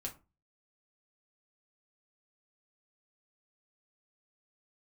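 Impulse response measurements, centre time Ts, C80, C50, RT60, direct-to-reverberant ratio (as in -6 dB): 13 ms, 21.0 dB, 14.0 dB, 0.30 s, -0.5 dB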